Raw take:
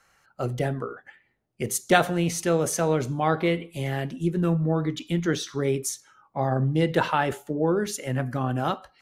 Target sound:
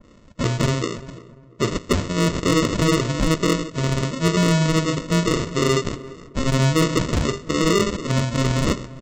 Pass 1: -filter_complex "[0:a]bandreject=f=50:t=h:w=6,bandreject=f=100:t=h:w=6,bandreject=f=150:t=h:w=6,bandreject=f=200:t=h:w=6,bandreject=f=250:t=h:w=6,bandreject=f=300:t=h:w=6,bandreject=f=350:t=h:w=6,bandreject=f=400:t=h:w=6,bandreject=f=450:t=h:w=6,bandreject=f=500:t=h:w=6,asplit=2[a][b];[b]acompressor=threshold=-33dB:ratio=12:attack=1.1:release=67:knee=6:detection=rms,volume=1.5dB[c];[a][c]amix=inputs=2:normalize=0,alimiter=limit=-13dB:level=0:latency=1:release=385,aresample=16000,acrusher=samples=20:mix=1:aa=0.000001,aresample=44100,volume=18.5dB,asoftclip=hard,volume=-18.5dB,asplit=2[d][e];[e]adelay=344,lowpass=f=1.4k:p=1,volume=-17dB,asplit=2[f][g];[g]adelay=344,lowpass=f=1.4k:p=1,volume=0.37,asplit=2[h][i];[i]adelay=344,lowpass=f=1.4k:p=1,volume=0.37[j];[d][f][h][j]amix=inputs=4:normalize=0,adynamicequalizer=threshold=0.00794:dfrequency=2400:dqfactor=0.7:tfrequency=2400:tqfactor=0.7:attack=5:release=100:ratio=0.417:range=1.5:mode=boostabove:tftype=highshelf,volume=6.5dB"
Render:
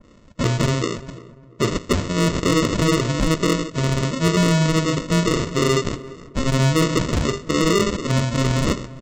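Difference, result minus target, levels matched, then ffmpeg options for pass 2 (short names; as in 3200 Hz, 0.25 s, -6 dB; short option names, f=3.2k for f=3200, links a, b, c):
compressor: peak gain reduction -10 dB
-filter_complex "[0:a]bandreject=f=50:t=h:w=6,bandreject=f=100:t=h:w=6,bandreject=f=150:t=h:w=6,bandreject=f=200:t=h:w=6,bandreject=f=250:t=h:w=6,bandreject=f=300:t=h:w=6,bandreject=f=350:t=h:w=6,bandreject=f=400:t=h:w=6,bandreject=f=450:t=h:w=6,bandreject=f=500:t=h:w=6,asplit=2[a][b];[b]acompressor=threshold=-44dB:ratio=12:attack=1.1:release=67:knee=6:detection=rms,volume=1.5dB[c];[a][c]amix=inputs=2:normalize=0,alimiter=limit=-13dB:level=0:latency=1:release=385,aresample=16000,acrusher=samples=20:mix=1:aa=0.000001,aresample=44100,volume=18.5dB,asoftclip=hard,volume=-18.5dB,asplit=2[d][e];[e]adelay=344,lowpass=f=1.4k:p=1,volume=-17dB,asplit=2[f][g];[g]adelay=344,lowpass=f=1.4k:p=1,volume=0.37,asplit=2[h][i];[i]adelay=344,lowpass=f=1.4k:p=1,volume=0.37[j];[d][f][h][j]amix=inputs=4:normalize=0,adynamicequalizer=threshold=0.00794:dfrequency=2400:dqfactor=0.7:tfrequency=2400:tqfactor=0.7:attack=5:release=100:ratio=0.417:range=1.5:mode=boostabove:tftype=highshelf,volume=6.5dB"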